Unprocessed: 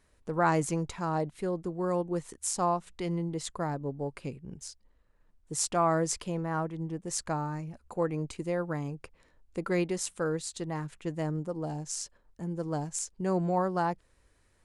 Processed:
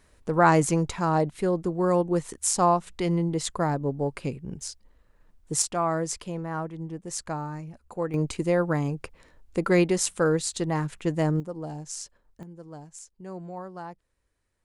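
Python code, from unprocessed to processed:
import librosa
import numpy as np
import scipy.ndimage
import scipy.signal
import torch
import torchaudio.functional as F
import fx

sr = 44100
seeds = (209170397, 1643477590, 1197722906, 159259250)

y = fx.gain(x, sr, db=fx.steps((0.0, 7.0), (5.62, 0.0), (8.14, 8.0), (11.4, -0.5), (12.43, -10.0)))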